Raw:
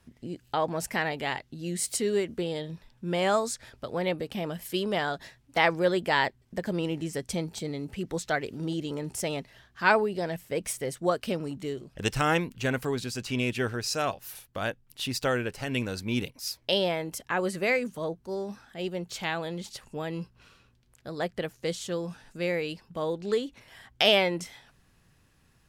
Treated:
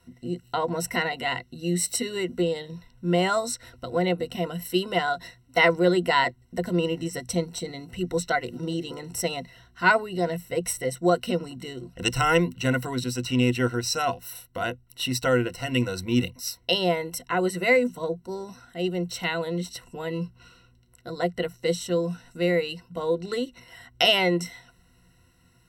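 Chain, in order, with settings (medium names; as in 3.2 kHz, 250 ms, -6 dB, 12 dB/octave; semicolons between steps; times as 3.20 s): rippled EQ curve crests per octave 2, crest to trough 17 dB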